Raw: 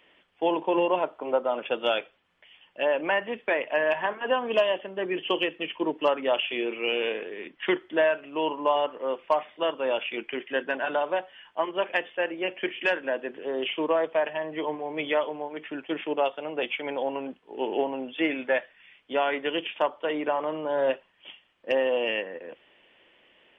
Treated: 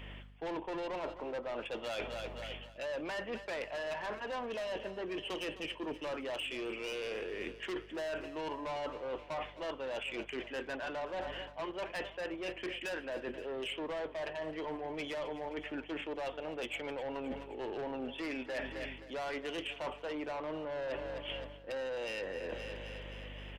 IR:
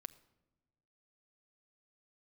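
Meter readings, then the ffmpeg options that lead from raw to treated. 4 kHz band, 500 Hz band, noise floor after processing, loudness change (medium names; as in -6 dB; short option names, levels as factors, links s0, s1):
no reading, -12.0 dB, -51 dBFS, -12.0 dB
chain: -af "acontrast=22,asoftclip=type=tanh:threshold=0.075,aeval=exprs='val(0)+0.00316*(sin(2*PI*50*n/s)+sin(2*PI*2*50*n/s)/2+sin(2*PI*3*50*n/s)/3+sin(2*PI*4*50*n/s)/4+sin(2*PI*5*50*n/s)/5)':c=same,aecho=1:1:262|524|786|1048|1310:0.141|0.0819|0.0475|0.0276|0.016,areverse,acompressor=threshold=0.01:ratio=16,areverse,volume=1.41"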